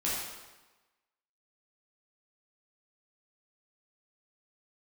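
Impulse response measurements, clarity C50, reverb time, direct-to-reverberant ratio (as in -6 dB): -1.0 dB, 1.2 s, -7.5 dB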